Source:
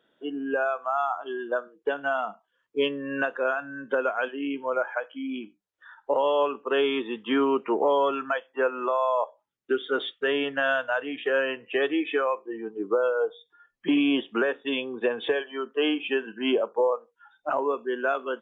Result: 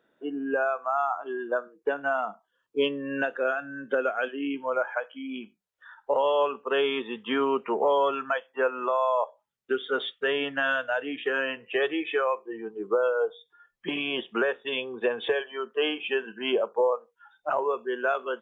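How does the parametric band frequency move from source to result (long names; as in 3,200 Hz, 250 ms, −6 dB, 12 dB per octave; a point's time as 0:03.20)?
parametric band −15 dB 0.23 octaves
0:02.23 3,200 Hz
0:03.39 980 Hz
0:04.28 980 Hz
0:04.74 310 Hz
0:10.39 310 Hz
0:10.97 1,200 Hz
0:11.67 280 Hz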